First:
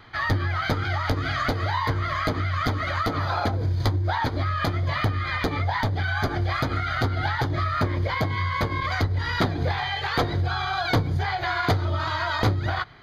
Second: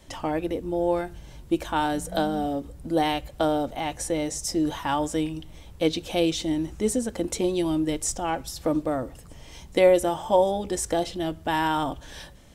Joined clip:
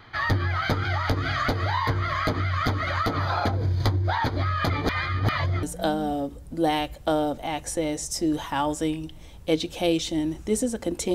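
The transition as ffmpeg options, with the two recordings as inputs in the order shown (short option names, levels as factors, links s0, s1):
-filter_complex "[0:a]apad=whole_dur=11.14,atrim=end=11.14,asplit=2[s0][s1];[s0]atrim=end=4.702[s2];[s1]atrim=start=4.698:end=5.632,asetpts=PTS-STARTPTS,areverse[s3];[1:a]atrim=start=1.958:end=7.47[s4];[s2][s3]acrossfade=d=0.004:c1=hsin:c2=hsin[s5];[s5][s4]acrossfade=d=0.004:c1=hsin:c2=hsin"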